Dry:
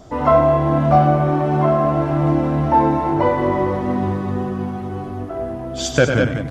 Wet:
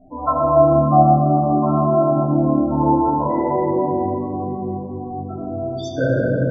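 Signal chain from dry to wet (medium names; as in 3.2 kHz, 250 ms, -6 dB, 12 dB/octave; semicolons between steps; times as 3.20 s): hum notches 50/100/150/200/250/300/350/400 Hz; loudest bins only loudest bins 16; reverberation RT60 2.7 s, pre-delay 3 ms, DRR -8.5 dB; trim -9 dB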